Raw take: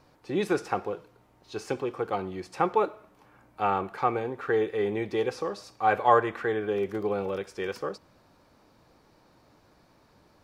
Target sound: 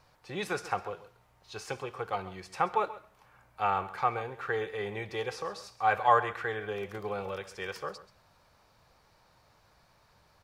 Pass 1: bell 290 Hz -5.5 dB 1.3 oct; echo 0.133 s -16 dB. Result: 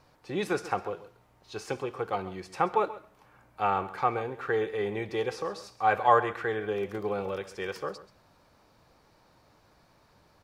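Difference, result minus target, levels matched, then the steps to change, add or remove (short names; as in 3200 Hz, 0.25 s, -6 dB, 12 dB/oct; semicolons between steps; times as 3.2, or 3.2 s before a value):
250 Hz band +4.5 dB
change: bell 290 Hz -15 dB 1.3 oct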